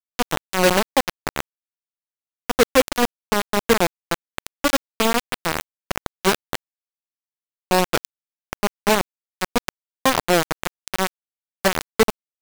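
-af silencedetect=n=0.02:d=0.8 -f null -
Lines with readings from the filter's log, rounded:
silence_start: 1.40
silence_end: 2.50 | silence_duration: 1.09
silence_start: 6.55
silence_end: 7.71 | silence_duration: 1.16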